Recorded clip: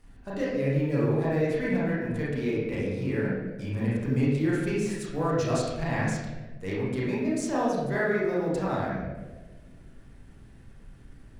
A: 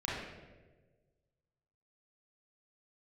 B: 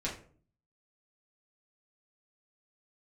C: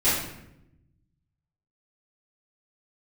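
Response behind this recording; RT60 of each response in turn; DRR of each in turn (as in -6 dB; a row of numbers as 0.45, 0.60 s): A; 1.4, 0.50, 0.85 s; -7.0, -6.0, -14.5 dB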